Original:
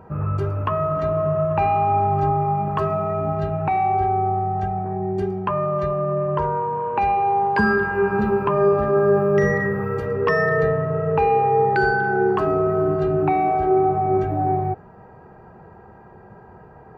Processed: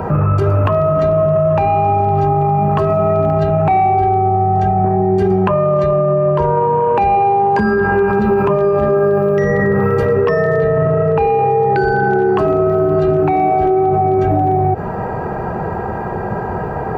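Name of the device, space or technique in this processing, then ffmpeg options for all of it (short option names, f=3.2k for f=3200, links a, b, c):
mastering chain: -filter_complex "[0:a]asettb=1/sr,asplit=3[a][b][c];[a]atrim=end=10.374[d];[b]atrim=start=10.37:end=11.79,asetpts=PTS-STARTPTS,afade=t=in:d=0.004:c=qsin,afade=t=out:st=1.416:d=0.004:c=qsin,lowpass=f=5.2k:w=0.5412,lowpass=f=5.2k:w=1.3066[e];[c]atrim=start=11.786[f];[d][e]acrossfade=d=0.004:c1=hsin:c2=qsin[g];[g][f]acrossfade=d=0.004:c1=qsin:c2=hsin,equalizer=f=630:t=o:w=0.87:g=2.5,acrossover=split=83|710|2100[h][i][j][k];[h]acompressor=threshold=-36dB:ratio=4[l];[i]acompressor=threshold=-19dB:ratio=4[m];[j]acompressor=threshold=-33dB:ratio=4[n];[k]acompressor=threshold=-43dB:ratio=4[o];[l][m][n][o]amix=inputs=4:normalize=0,acompressor=threshold=-24dB:ratio=3,asoftclip=type=hard:threshold=-18dB,alimiter=level_in=29dB:limit=-1dB:release=50:level=0:latency=1,volume=-6dB"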